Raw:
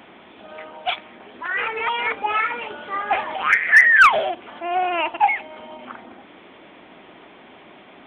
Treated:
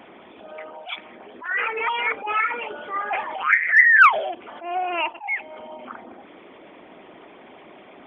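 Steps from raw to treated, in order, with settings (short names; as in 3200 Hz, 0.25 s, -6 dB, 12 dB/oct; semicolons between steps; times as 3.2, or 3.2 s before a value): formant sharpening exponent 1.5; dynamic EQ 660 Hz, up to -5 dB, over -32 dBFS, Q 2; attack slew limiter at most 150 dB/s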